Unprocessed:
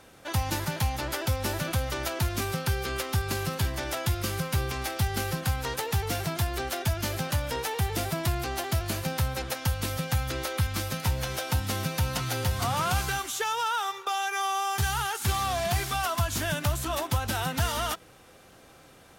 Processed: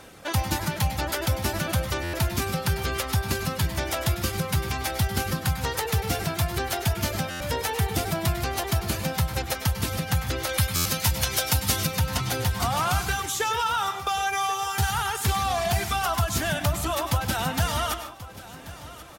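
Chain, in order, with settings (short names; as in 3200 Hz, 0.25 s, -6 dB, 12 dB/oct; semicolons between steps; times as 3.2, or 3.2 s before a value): reverb removal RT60 0.85 s; 10.49–11.87 high shelf 2600 Hz +9.5 dB; in parallel at +1.5 dB: compressor, threshold -35 dBFS, peak gain reduction 13.5 dB; on the sum: feedback echo 1.084 s, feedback 44%, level -17 dB; on a send at -7.5 dB: reverb RT60 0.45 s, pre-delay 95 ms; on the sum: stuck buffer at 2.03/7.3/10.75, samples 512, times 8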